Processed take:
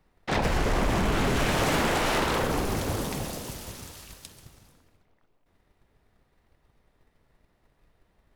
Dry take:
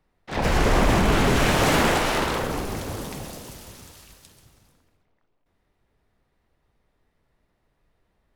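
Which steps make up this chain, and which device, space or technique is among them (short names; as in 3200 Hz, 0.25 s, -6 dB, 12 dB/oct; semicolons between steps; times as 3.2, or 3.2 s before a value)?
drum-bus smash (transient shaper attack +7 dB, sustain 0 dB; compressor, threshold -22 dBFS, peak gain reduction 8.5 dB; soft clip -19.5 dBFS, distortion -18 dB); gain +2.5 dB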